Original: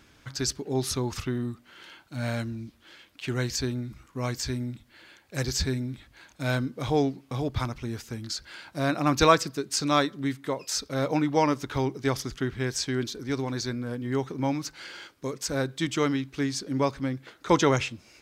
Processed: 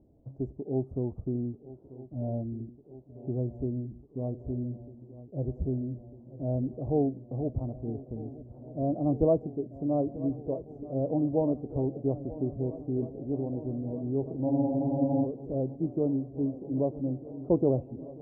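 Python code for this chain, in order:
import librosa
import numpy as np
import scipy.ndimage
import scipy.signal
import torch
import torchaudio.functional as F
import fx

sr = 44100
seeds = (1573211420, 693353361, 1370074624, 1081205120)

y = scipy.signal.sosfilt(scipy.signal.ellip(4, 1.0, 60, 680.0, 'lowpass', fs=sr, output='sos'), x)
y = fx.echo_swing(y, sr, ms=1249, ratio=3, feedback_pct=79, wet_db=-17.5)
y = fx.spec_freeze(y, sr, seeds[0], at_s=14.48, hold_s=0.77)
y = y * librosa.db_to_amplitude(-1.5)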